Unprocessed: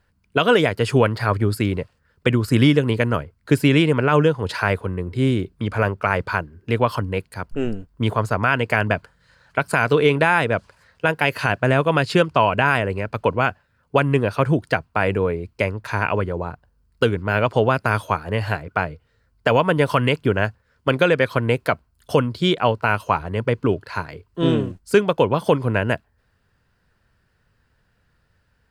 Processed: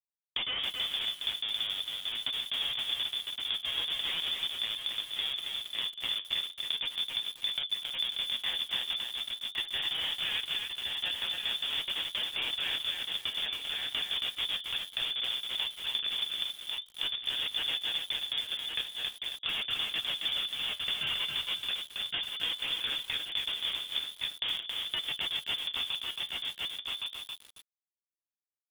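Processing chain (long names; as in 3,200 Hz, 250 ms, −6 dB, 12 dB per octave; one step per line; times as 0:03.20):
pitch glide at a constant tempo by +7 semitones starting unshifted
comparator with hysteresis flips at −17.5 dBFS
brickwall limiter −22 dBFS, peak gain reduction 6 dB
hum removal 92 Hz, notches 6
voice inversion scrambler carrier 3,500 Hz
single-tap delay 1,114 ms −13 dB
downward compressor 12 to 1, threshold −34 dBFS, peak gain reduction 13.5 dB
flanger 0.4 Hz, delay 6 ms, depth 9.1 ms, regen +62%
feedback echo at a low word length 273 ms, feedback 35%, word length 9 bits, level −3 dB
level +7 dB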